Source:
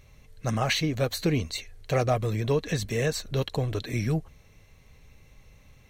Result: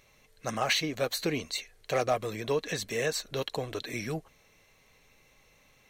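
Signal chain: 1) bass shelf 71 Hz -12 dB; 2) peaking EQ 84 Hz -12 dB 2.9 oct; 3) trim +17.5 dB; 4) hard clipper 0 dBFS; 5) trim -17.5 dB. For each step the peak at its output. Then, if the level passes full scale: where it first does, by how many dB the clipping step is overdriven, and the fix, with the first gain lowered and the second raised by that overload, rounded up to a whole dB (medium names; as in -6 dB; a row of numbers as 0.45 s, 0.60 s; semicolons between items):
-12.5 dBFS, -12.5 dBFS, +5.0 dBFS, 0.0 dBFS, -17.5 dBFS; step 3, 5.0 dB; step 3 +12.5 dB, step 5 -12.5 dB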